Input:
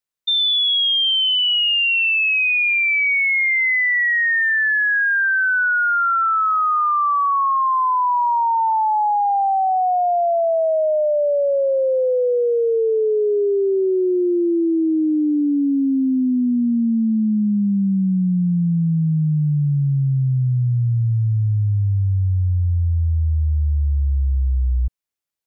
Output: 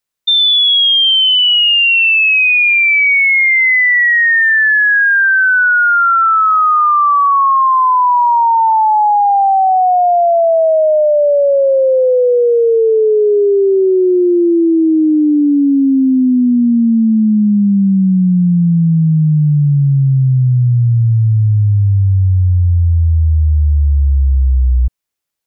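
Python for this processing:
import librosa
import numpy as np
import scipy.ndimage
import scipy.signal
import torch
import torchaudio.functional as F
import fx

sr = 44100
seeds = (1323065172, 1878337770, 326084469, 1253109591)

y = fx.peak_eq(x, sr, hz=98.0, db=14.5, octaves=1.2, at=(6.51, 7.67))
y = F.gain(torch.from_numpy(y), 7.5).numpy()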